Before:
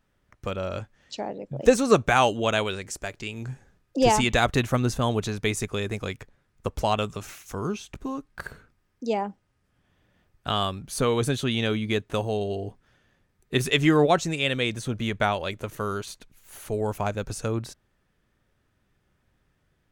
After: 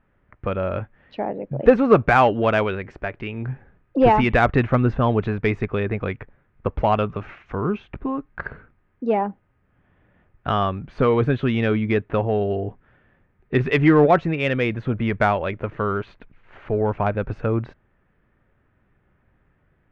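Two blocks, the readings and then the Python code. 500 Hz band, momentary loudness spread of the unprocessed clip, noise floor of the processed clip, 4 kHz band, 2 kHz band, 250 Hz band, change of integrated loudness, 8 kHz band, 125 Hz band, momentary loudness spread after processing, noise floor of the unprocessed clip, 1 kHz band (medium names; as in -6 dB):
+5.0 dB, 17 LU, -65 dBFS, -7.5 dB, +3.5 dB, +5.5 dB, +4.5 dB, under -20 dB, +5.5 dB, 15 LU, -71 dBFS, +5.0 dB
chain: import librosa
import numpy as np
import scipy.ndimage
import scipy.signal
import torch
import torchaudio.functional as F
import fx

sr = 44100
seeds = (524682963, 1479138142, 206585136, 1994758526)

p1 = scipy.signal.sosfilt(scipy.signal.butter(4, 2300.0, 'lowpass', fs=sr, output='sos'), x)
p2 = 10.0 ** (-19.5 / 20.0) * np.tanh(p1 / 10.0 ** (-19.5 / 20.0))
p3 = p1 + F.gain(torch.from_numpy(p2), -5.0).numpy()
y = F.gain(torch.from_numpy(p3), 2.5).numpy()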